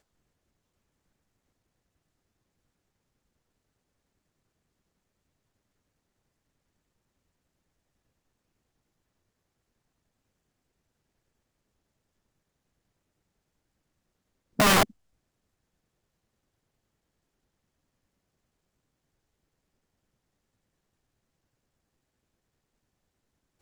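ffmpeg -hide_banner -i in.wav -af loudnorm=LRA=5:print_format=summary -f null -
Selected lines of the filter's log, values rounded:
Input Integrated:    -22.4 LUFS
Input True Peak:     -11.8 dBTP
Input LRA:             0.0 LU
Input Threshold:     -33.6 LUFS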